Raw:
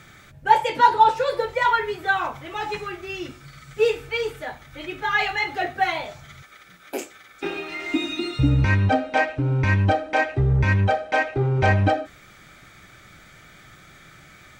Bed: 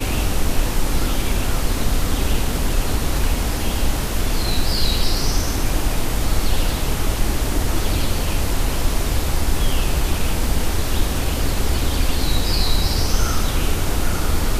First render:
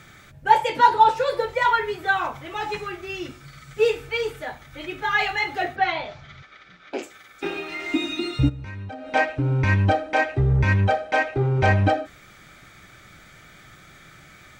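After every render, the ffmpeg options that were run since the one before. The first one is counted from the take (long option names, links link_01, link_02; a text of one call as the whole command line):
ffmpeg -i in.wav -filter_complex "[0:a]asplit=3[link_01][link_02][link_03];[link_01]afade=type=out:start_time=5.75:duration=0.02[link_04];[link_02]lowpass=frequency=5000:width=0.5412,lowpass=frequency=5000:width=1.3066,afade=type=in:start_time=5.75:duration=0.02,afade=type=out:start_time=7.02:duration=0.02[link_05];[link_03]afade=type=in:start_time=7.02:duration=0.02[link_06];[link_04][link_05][link_06]amix=inputs=3:normalize=0,asplit=3[link_07][link_08][link_09];[link_07]afade=type=out:start_time=8.48:duration=0.02[link_10];[link_08]acompressor=threshold=-31dB:ratio=20:attack=3.2:release=140:knee=1:detection=peak,afade=type=in:start_time=8.48:duration=0.02,afade=type=out:start_time=9.12:duration=0.02[link_11];[link_09]afade=type=in:start_time=9.12:duration=0.02[link_12];[link_10][link_11][link_12]amix=inputs=3:normalize=0" out.wav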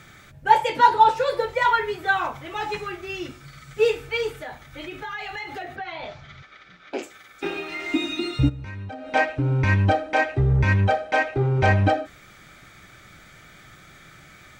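ffmpeg -i in.wav -filter_complex "[0:a]asettb=1/sr,asplit=3[link_01][link_02][link_03];[link_01]atrim=end=4.384[link_04];[link_02]atrim=start=4.38:end=6.03,asetpts=PTS-STARTPTS,afade=type=in:duration=0.004:curve=qsin,afade=type=out:start_time=1.646:duration=0.004:curve=qsin,acompressor=threshold=-30dB:ratio=6:attack=3.2:release=140:knee=1:detection=peak[link_05];[link_03]atrim=start=6.026[link_06];[link_04][link_05]acrossfade=duration=0.004:curve1=hsin:curve2=qsin[link_07];[link_07][link_06]acrossfade=duration=0.004:curve1=qsin:curve2=hsin" out.wav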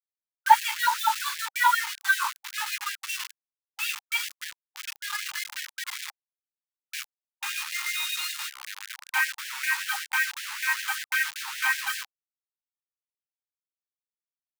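ffmpeg -i in.wav -af "acrusher=bits=4:mix=0:aa=0.000001,afftfilt=real='re*gte(b*sr/1024,800*pow(1600/800,0.5+0.5*sin(2*PI*5.2*pts/sr)))':imag='im*gte(b*sr/1024,800*pow(1600/800,0.5+0.5*sin(2*PI*5.2*pts/sr)))':win_size=1024:overlap=0.75" out.wav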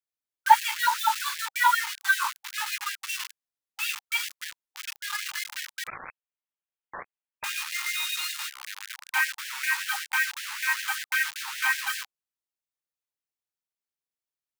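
ffmpeg -i in.wav -filter_complex "[0:a]asettb=1/sr,asplit=3[link_01][link_02][link_03];[link_01]atrim=end=5.874[link_04];[link_02]atrim=start=5.87:end=7.44,asetpts=PTS-STARTPTS,afade=type=in:duration=0.004:curve=qsin,afade=type=out:start_time=1.566:duration=0.004:curve=qsin,lowpass=frequency=2900:width_type=q:width=0.5098,lowpass=frequency=2900:width_type=q:width=0.6013,lowpass=frequency=2900:width_type=q:width=0.9,lowpass=frequency=2900:width_type=q:width=2.563,afreqshift=-3400[link_05];[link_03]atrim=start=7.436[link_06];[link_04][link_05]acrossfade=duration=0.004:curve1=hsin:curve2=qsin[link_07];[link_07][link_06]acrossfade=duration=0.004:curve1=qsin:curve2=hsin" out.wav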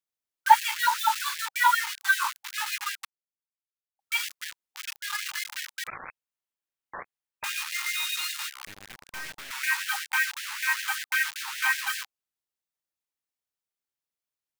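ffmpeg -i in.wav -filter_complex "[0:a]asettb=1/sr,asplit=3[link_01][link_02][link_03];[link_01]atrim=end=8.664[link_04];[link_02]atrim=start=8.66:end=9.51,asetpts=PTS-STARTPTS,afade=type=in:duration=0.004:curve=qsin,afade=type=out:start_time=0.846:duration=0.004:curve=qsin,aeval=exprs='(tanh(63.1*val(0)+0.6)-tanh(0.6))/63.1':channel_layout=same[link_05];[link_03]atrim=start=9.506[link_06];[link_04][link_05]acrossfade=duration=0.004:curve1=hsin:curve2=qsin[link_07];[link_07][link_06]acrossfade=duration=0.004:curve1=qsin:curve2=hsin,asplit=3[link_08][link_09][link_10];[link_08]atrim=end=3.05,asetpts=PTS-STARTPTS,afade=type=out:start_time=3.046:duration=0.004:curve=hsin[link_11];[link_09]atrim=start=3.05:end=3.99,asetpts=PTS-STARTPTS,volume=0[link_12];[link_10]atrim=start=3.99,asetpts=PTS-STARTPTS,afade=type=in:duration=0.004:curve=hsin[link_13];[link_11][link_12][link_13]concat=n=3:v=0:a=1" out.wav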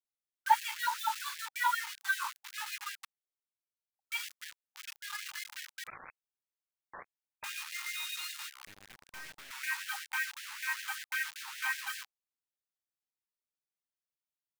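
ffmpeg -i in.wav -af "volume=-9dB" out.wav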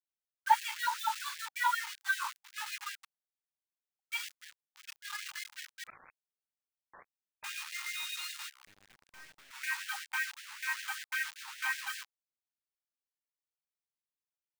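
ffmpeg -i in.wav -af "agate=range=-8dB:threshold=-44dB:ratio=16:detection=peak,equalizer=frequency=12000:width=3.6:gain=-6" out.wav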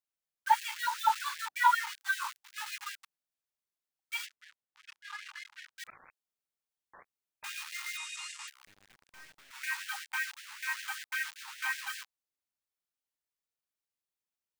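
ffmpeg -i in.wav -filter_complex "[0:a]asettb=1/sr,asplit=3[link_01][link_02][link_03];[link_01]atrim=end=0.984[link_04];[link_02]atrim=start=0.98:end=1.94,asetpts=PTS-STARTPTS,afade=type=in:duration=0.004:curve=qsin,afade=type=out:start_time=0.956:duration=0.004:curve=qsin,equalizer=frequency=310:width=0.31:gain=11.5[link_05];[link_03]atrim=start=1.936[link_06];[link_04][link_05]acrossfade=duration=0.004:curve1=hsin:curve2=qsin[link_07];[link_07][link_06]acrossfade=duration=0.004:curve1=qsin:curve2=hsin,asplit=3[link_08][link_09][link_10];[link_08]afade=type=out:start_time=4.25:duration=0.02[link_11];[link_09]aemphasis=mode=reproduction:type=75fm,afade=type=in:start_time=4.25:duration=0.02,afade=type=out:start_time=5.75:duration=0.02[link_12];[link_10]afade=type=in:start_time=5.75:duration=0.02[link_13];[link_11][link_12][link_13]amix=inputs=3:normalize=0,asettb=1/sr,asplit=3[link_14][link_15][link_16];[link_14]atrim=end=7.974[link_17];[link_15]atrim=start=7.97:end=8.48,asetpts=PTS-STARTPTS,afade=type=in:duration=0.004:curve=qsin,afade=type=out:start_time=0.506:duration=0.004:curve=qsin,highpass=320,equalizer=frequency=360:width_type=q:width=4:gain=8,equalizer=frequency=630:width_type=q:width=4:gain=10,equalizer=frequency=1100:width_type=q:width=4:gain=4,equalizer=frequency=1500:width_type=q:width=4:gain=-6,equalizer=frequency=3900:width_type=q:width=4:gain=-7,equalizer=frequency=7800:width_type=q:width=4:gain=5,lowpass=frequency=8800:width=0.5412,lowpass=frequency=8800:width=1.3066[link_18];[link_16]atrim=start=8.476[link_19];[link_17][link_18]acrossfade=duration=0.004:curve1=hsin:curve2=qsin[link_20];[link_20][link_19]acrossfade=duration=0.004:curve1=qsin:curve2=hsin" out.wav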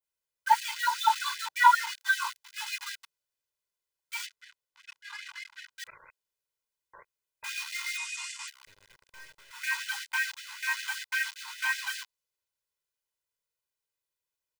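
ffmpeg -i in.wav -af "adynamicequalizer=threshold=0.00447:dfrequency=4400:dqfactor=0.77:tfrequency=4400:tqfactor=0.77:attack=5:release=100:ratio=0.375:range=2:mode=boostabove:tftype=bell,aecho=1:1:2:0.85" out.wav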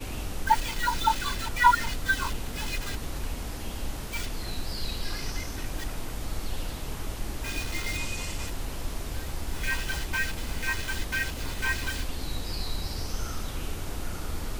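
ffmpeg -i in.wav -i bed.wav -filter_complex "[1:a]volume=-14dB[link_01];[0:a][link_01]amix=inputs=2:normalize=0" out.wav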